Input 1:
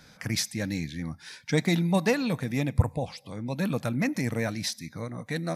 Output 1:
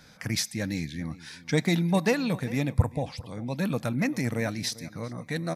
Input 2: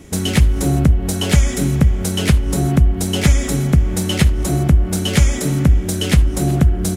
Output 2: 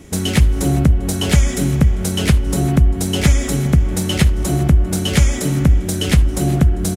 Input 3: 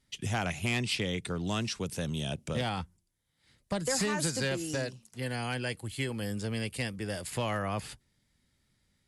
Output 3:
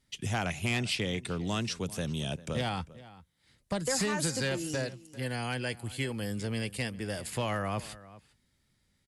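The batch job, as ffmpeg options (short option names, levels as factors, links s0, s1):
-filter_complex "[0:a]asplit=2[s0][s1];[s1]adelay=396.5,volume=0.126,highshelf=f=4000:g=-8.92[s2];[s0][s2]amix=inputs=2:normalize=0"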